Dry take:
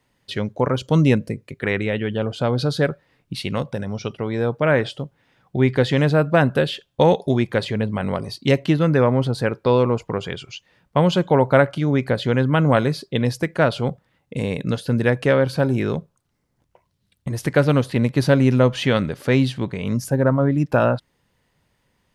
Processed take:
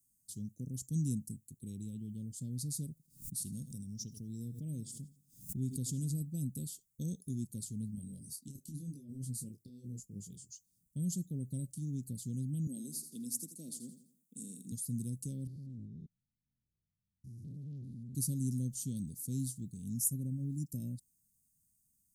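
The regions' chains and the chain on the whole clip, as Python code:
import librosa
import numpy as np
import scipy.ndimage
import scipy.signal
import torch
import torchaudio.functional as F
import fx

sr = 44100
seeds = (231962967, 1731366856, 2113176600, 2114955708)

y = fx.chain(x, sr, fx.echo_feedback(ms=83, feedback_pct=41, wet_db=-17),
    fx.pre_swell(db_per_s=120.0), at=(2.91, 6.22))
y = fx.chain(y, sr, fx.low_shelf(hz=86.0, db=-7.0),
    fx.over_compress(threshold_db=-19.0, ratio=-0.5),
    fx.detune_double(cents=31), at=(7.95, 10.52))
y = fx.chain(y, sr, fx.highpass(hz=220.0, slope=24),
    fx.echo_feedback(ms=84, feedback_pct=41, wet_db=-11.0), at=(12.67, 14.72))
y = fx.chain(y, sr, fx.spec_steps(hold_ms=200),
    fx.air_absorb(metres=340.0),
    fx.transformer_sat(knee_hz=880.0), at=(15.47, 18.15))
y = scipy.signal.sosfilt(scipy.signal.ellip(3, 1.0, 80, [230.0, 7400.0], 'bandstop', fs=sr, output='sos'), y)
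y = scipy.signal.lfilter([1.0, -0.9], [1.0], y)
y = F.gain(torch.from_numpy(y), 4.0).numpy()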